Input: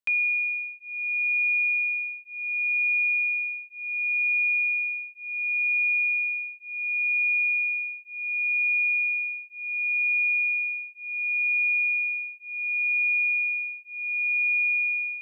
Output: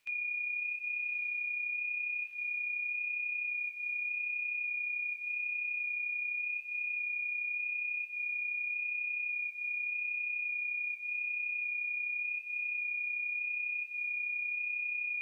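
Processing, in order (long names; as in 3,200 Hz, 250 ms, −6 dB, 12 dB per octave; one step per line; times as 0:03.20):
compressor on every frequency bin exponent 0.6
high-shelf EQ 2,300 Hz +7 dB
on a send: feedback delay with all-pass diffusion 1,202 ms, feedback 52%, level −7 dB
on the sum: brickwall limiter −27 dBFS, peak gain reduction 11.5 dB
flanger 0.86 Hz, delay 6.1 ms, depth 7.6 ms, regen −59%
level −1.5 dB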